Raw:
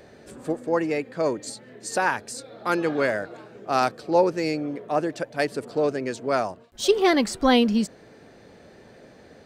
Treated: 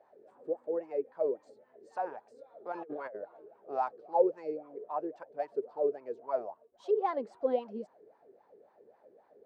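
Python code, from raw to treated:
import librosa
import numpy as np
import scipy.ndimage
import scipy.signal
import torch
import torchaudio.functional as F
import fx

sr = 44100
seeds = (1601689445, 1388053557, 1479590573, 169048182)

y = fx.wah_lfo(x, sr, hz=3.7, low_hz=390.0, high_hz=1000.0, q=8.3)
y = fx.over_compress(y, sr, threshold_db=-43.0, ratio=-1.0, at=(2.72, 3.16))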